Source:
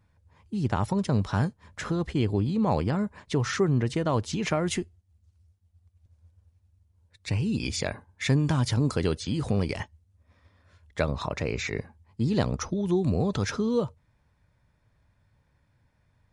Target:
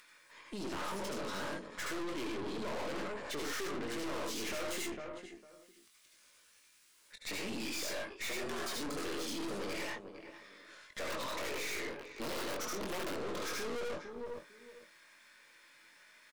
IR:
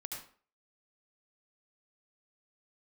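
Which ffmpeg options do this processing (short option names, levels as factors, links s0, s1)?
-filter_complex "[1:a]atrim=start_sample=2205,atrim=end_sample=6174[s0];[0:a][s0]afir=irnorm=-1:irlink=0,asplit=2[s1][s2];[s2]alimiter=level_in=1.12:limit=0.0631:level=0:latency=1:release=336,volume=0.891,volume=1.12[s3];[s1][s3]amix=inputs=2:normalize=0,asettb=1/sr,asplit=3[s4][s5][s6];[s4]atrim=end=11.094[s7];[s5]atrim=start=11.09:end=13.14,asetpts=PTS-STARTPTS,afade=t=in:d=0.004:c=qsin,afade=t=out:st=2.046:d=0.004:c=qsin,aeval=exprs='(mod(7.94*val(0)+1,2)-1)/7.94':c=same[s8];[s6]atrim=start=13.136[s9];[s7][s8]acrossfade=d=0.004:c1=hsin:c2=qsin[s10];[s10][s9]acrossfade=d=0.004:c1=qsin:c2=hsin,highpass=f=300:w=0.5412,highpass=f=300:w=1.3066,asplit=2[s11][s12];[s12]adelay=21,volume=0.531[s13];[s11][s13]amix=inputs=2:normalize=0,acrossover=split=400|1400[s14][s15][s16];[s16]acompressor=mode=upward:threshold=0.00447:ratio=2.5[s17];[s14][s15][s17]amix=inputs=3:normalize=0,equalizer=f=780:w=5.9:g=-11.5,asplit=2[s18][s19];[s19]adelay=453,lowpass=f=1800:p=1,volume=0.141,asplit=2[s20][s21];[s21]adelay=453,lowpass=f=1800:p=1,volume=0.22[s22];[s18][s20][s22]amix=inputs=3:normalize=0,asplit=3[s23][s24][s25];[s23]afade=t=out:st=8.09:d=0.02[s26];[s24]afreqshift=87,afade=t=in:st=8.09:d=0.02,afade=t=out:st=8.74:d=0.02[s27];[s25]afade=t=in:st=8.74:d=0.02[s28];[s26][s27][s28]amix=inputs=3:normalize=0,aeval=exprs='(tanh(112*val(0)+0.7)-tanh(0.7))/112':c=same,volume=1.41"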